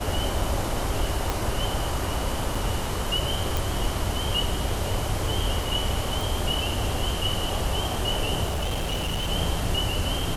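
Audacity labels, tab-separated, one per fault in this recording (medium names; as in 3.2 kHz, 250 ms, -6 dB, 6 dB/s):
1.300000	1.300000	pop
2.550000	2.550000	dropout 4.5 ms
3.570000	3.570000	pop
6.210000	6.210000	pop
8.450000	9.290000	clipped -23.5 dBFS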